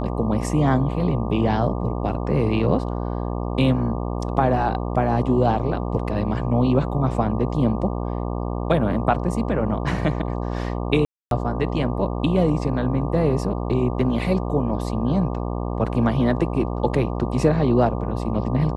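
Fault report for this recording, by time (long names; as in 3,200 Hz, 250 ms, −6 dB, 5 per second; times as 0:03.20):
mains buzz 60 Hz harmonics 20 −26 dBFS
0:11.05–0:11.31: drop-out 262 ms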